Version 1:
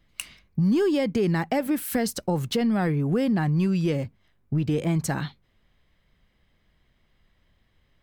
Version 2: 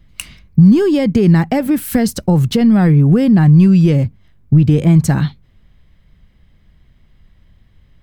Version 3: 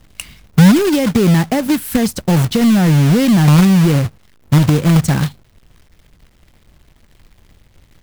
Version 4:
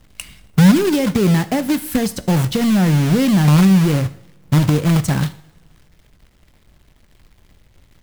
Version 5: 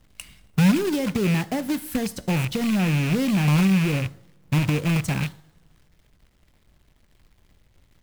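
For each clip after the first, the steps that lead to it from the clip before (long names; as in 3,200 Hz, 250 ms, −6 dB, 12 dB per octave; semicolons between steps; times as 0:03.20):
bass and treble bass +11 dB, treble 0 dB; level +6.5 dB
log-companded quantiser 4 bits; level −1 dB
coupled-rooms reverb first 0.59 s, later 2.2 s, from −21 dB, DRR 13 dB; level −3 dB
loose part that buzzes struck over −17 dBFS, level −13 dBFS; level −7.5 dB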